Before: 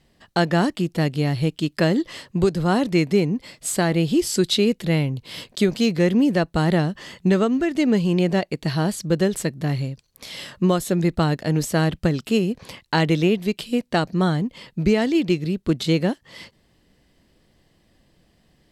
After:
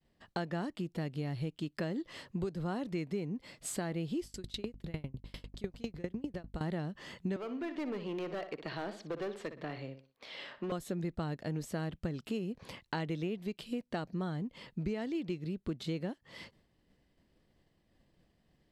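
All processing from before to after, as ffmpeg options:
-filter_complex "[0:a]asettb=1/sr,asplit=3[a][b][c];[a]atrim=end=4.244[d];[b]atrim=start=4.24:end=6.61,asetpts=PTS-STARTPTS,afade=t=in:d=0.004:c=qsin,afade=t=out:st=2.366:d=0.004:c=qsin,aeval=exprs='val(0)+0.0251*(sin(2*PI*50*n/s)+sin(2*PI*2*50*n/s)/2+sin(2*PI*3*50*n/s)/3+sin(2*PI*4*50*n/s)/4+sin(2*PI*5*50*n/s)/5)':c=same,aeval=exprs='val(0)*pow(10,-31*if(lt(mod(10*n/s,1),2*abs(10)/1000),1-mod(10*n/s,1)/(2*abs(10)/1000),(mod(10*n/s,1)-2*abs(10)/1000)/(1-2*abs(10)/1000))/20)':c=same[e];[c]atrim=start=6.606[f];[d][e]acrossfade=d=0.004:c1=hsin:c2=qsin[g];[g][f]acrossfade=d=0.004:c1=qsin:c2=hsin,asettb=1/sr,asplit=3[h][i][j];[h]atrim=end=7.364[k];[i]atrim=start=7.36:end=10.72,asetpts=PTS-STARTPTS,afade=t=in:d=0.004:c=qsin,afade=t=out:st=3.356:d=0.004:c=qsin,acrossover=split=310 4500:gain=0.141 1 0.0891[l][m][n];[l][m][n]amix=inputs=3:normalize=0,asoftclip=type=hard:threshold=-22dB,asplit=2[o][p];[p]adelay=60,lowpass=f=4.4k:p=1,volume=-11dB,asplit=2[q][r];[r]adelay=60,lowpass=f=4.4k:p=1,volume=0.34,asplit=2[s][t];[t]adelay=60,lowpass=f=4.4k:p=1,volume=0.34,asplit=2[u][v];[v]adelay=60,lowpass=f=4.4k:p=1,volume=0.34[w];[o][q][s][u][w]amix=inputs=5:normalize=0,atrim=end_sample=148176[x];[j]atrim=start=10.716[y];[k][x]acrossfade=d=0.004:c1=hsin:c2=qsin[z];[z][y]acrossfade=d=0.004:c1=qsin:c2=hsin,agate=range=-33dB:threshold=-55dB:ratio=3:detection=peak,highshelf=f=3.7k:g=-7,acompressor=threshold=-30dB:ratio=3,volume=-6.5dB"

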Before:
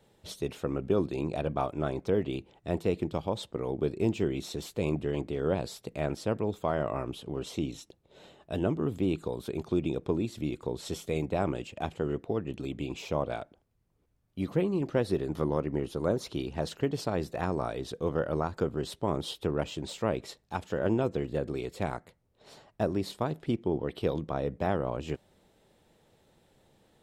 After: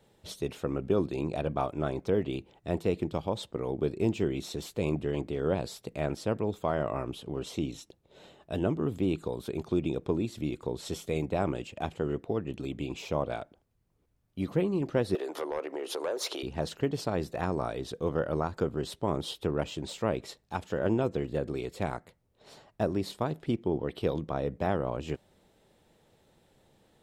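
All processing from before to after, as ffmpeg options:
-filter_complex "[0:a]asettb=1/sr,asplit=3[a][b][c];[a]atrim=end=15.154[d];[b]atrim=start=15.15:end=16.43,asetpts=PTS-STARTPTS,afade=t=in:d=0.004:c=qsin,afade=t=out:st=1.276:d=0.004:c=qsin,acompressor=threshold=-38dB:ratio=3:attack=3.2:release=140:knee=1:detection=peak,highpass=f=410:w=0.5412,highpass=f=410:w=1.3066,aeval=exprs='0.0531*sin(PI/2*2.51*val(0)/0.0531)':c=same[e];[c]atrim=start=16.426[f];[d][e]acrossfade=d=0.004:c1=hsin:c2=qsin[g];[g][f]acrossfade=d=0.004:c1=qsin:c2=hsin"

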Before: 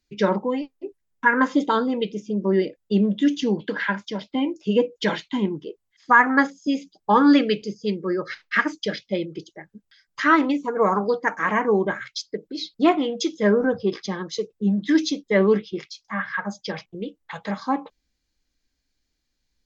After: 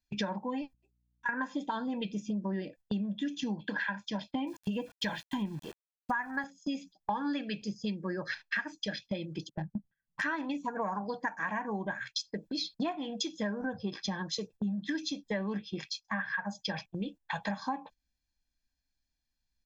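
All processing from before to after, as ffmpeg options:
-filter_complex "[0:a]asettb=1/sr,asplit=3[a][b][c];[a]atrim=end=0.734[d];[b]atrim=start=0.73:end=1.29,asetpts=PTS-STARTPTS,afade=t=in:d=0.004:c=qsin,afade=t=out:st=0.556:d=0.004:c=qsin,agate=range=-33dB:threshold=-39dB:ratio=3:release=100:detection=peak,aderivative,aeval=exprs='val(0)+0.000447*(sin(2*PI*60*n/s)+sin(2*PI*2*60*n/s)/2+sin(2*PI*3*60*n/s)/3+sin(2*PI*4*60*n/s)/4+sin(2*PI*5*60*n/s)/5)':c=same[e];[c]atrim=start=1.286[f];[d][e]acrossfade=d=0.004:c1=hsin:c2=qsin[g];[g][f]acrossfade=d=0.004:c1=qsin:c2=hsin,asettb=1/sr,asplit=3[h][i][j];[h]atrim=end=4.474[k];[i]atrim=start=4.47:end=6.44,asetpts=PTS-STARTPTS,afade=t=in:d=0.004:c=qsin,afade=t=out:st=1.966:d=0.004:c=qsin,asubboost=boost=8.5:cutoff=130,aeval=exprs='val(0)*gte(abs(val(0)),0.0075)':c=same[l];[j]atrim=start=6.436[m];[k][l]acrossfade=d=0.004:c1=hsin:c2=qsin[n];[n][m]acrossfade=d=0.004:c1=qsin:c2=hsin,asettb=1/sr,asplit=3[o][p][q];[o]atrim=end=9.494[r];[p]atrim=start=9.49:end=10.22,asetpts=PTS-STARTPTS,afade=t=in:d=0.004:c=qsin,afade=t=out:st=0.726:d=0.004:c=qsin,lowpass=2.4k,equalizer=f=170:w=0.88:g=13.5,adynamicsmooth=sensitivity=2:basefreq=700[s];[q]atrim=start=10.216[t];[r][s]acrossfade=d=0.004:c1=hsin:c2=qsin[u];[u][t]acrossfade=d=0.004:c1=qsin:c2=hsin,agate=range=-12dB:threshold=-41dB:ratio=16:detection=peak,aecho=1:1:1.2:0.68,acompressor=threshold=-31dB:ratio=10"

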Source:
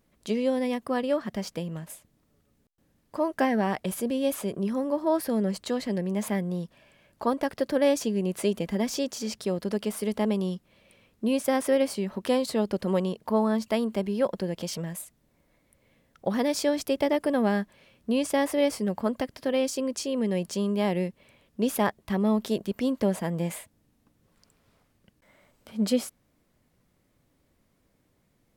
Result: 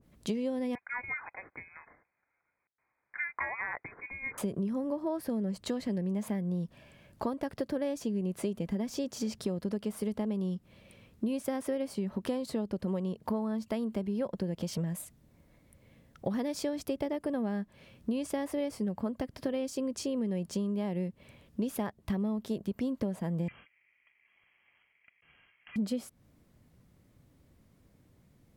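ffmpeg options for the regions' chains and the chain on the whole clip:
-filter_complex "[0:a]asettb=1/sr,asplit=3[a][b][c];[a]atrim=end=0.754[d];[b]atrim=start=0.75:end=4.38,asetpts=PTS-STARTPTS,afade=t=in:d=0.004:c=qsin,afade=t=out:st=3.626:d=0.004:c=qsin,highpass=860,lowpass=f=2.3k:t=q:w=0.5098,lowpass=f=2.3k:t=q:w=0.6013,lowpass=f=2.3k:t=q:w=0.9,lowpass=f=2.3k:t=q:w=2.563,afreqshift=-2700[e];[c]atrim=start=4.376[f];[d][e]acrossfade=d=0.004:c1=hsin:c2=qsin[g];[g][f]acrossfade=d=0.004:c1=qsin:c2=hsin,asettb=1/sr,asplit=3[h][i][j];[h]atrim=end=23.484[k];[i]atrim=start=23.48:end=25.76,asetpts=PTS-STARTPTS,afade=t=in:d=0.004:c=qsin,afade=t=out:st=2.276:d=0.004:c=qsin,bandreject=f=660:w=12,aeval=exprs='val(0)*sin(2*PI*1100*n/s)':c=same,lowpass=f=2.8k:t=q:w=0.5098,lowpass=f=2.8k:t=q:w=0.6013,lowpass=f=2.8k:t=q:w=0.9,lowpass=f=2.8k:t=q:w=2.563,afreqshift=-3300[l];[j]atrim=start=25.756[m];[k][l]acrossfade=d=0.004:c1=hsin:c2=qsin[n];[n][m]acrossfade=d=0.004:c1=qsin:c2=hsin,equalizer=f=95:t=o:w=2.9:g=9,acompressor=threshold=-30dB:ratio=6,adynamicequalizer=threshold=0.00316:dfrequency=1600:dqfactor=0.7:tfrequency=1600:tqfactor=0.7:attack=5:release=100:ratio=0.375:range=1.5:mode=cutabove:tftype=highshelf"

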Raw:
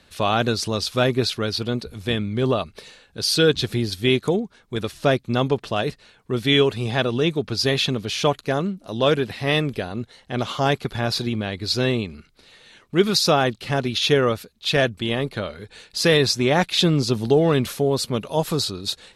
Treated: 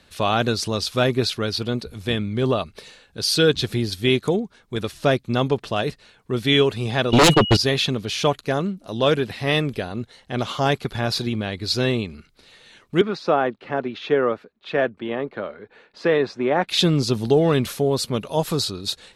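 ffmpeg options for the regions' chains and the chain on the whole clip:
-filter_complex "[0:a]asettb=1/sr,asplit=3[a][b][c];[a]atrim=end=7.124[d];[b]atrim=start=7.12:end=7.57,asetpts=PTS-STARTPTS,afade=t=in:d=0.004:c=qsin,afade=t=out:st=0.446:d=0.004:c=qsin,agate=range=-55dB:threshold=-30dB:ratio=16:release=100:detection=peak,aeval=exprs='val(0)+0.00891*sin(2*PI*2900*n/s)':c=same,aeval=exprs='0.355*sin(PI/2*3.98*val(0)/0.355)':c=same[e];[c]atrim=start=7.566[f];[d][e]acrossfade=d=0.004:c1=hsin:c2=qsin[g];[g][f]acrossfade=d=0.004:c1=qsin:c2=hsin,asettb=1/sr,asplit=3[h][i][j];[h]atrim=end=13.014[k];[i]atrim=start=13.01:end=16.68,asetpts=PTS-STARTPTS,afade=t=in:d=0.004:c=qsin,afade=t=out:st=3.666:d=0.004:c=qsin,lowpass=5.8k,acrossover=split=210 2100:gain=0.126 1 0.1[l][m][n];[l][m][n]amix=inputs=3:normalize=0[o];[j]atrim=start=16.676[p];[k][o]acrossfade=d=0.004:c1=hsin:c2=qsin[q];[q][p]acrossfade=d=0.004:c1=qsin:c2=hsin"

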